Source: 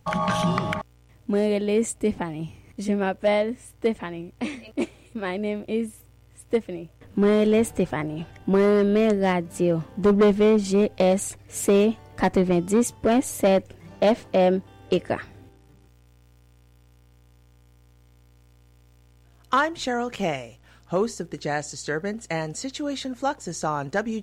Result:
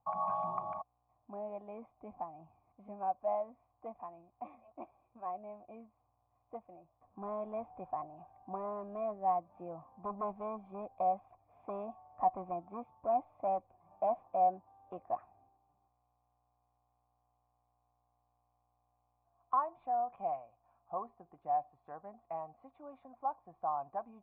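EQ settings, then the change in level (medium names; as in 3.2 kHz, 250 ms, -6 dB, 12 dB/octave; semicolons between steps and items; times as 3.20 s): cascade formant filter a; peaking EQ 440 Hz -8 dB 0.34 oct; 0.0 dB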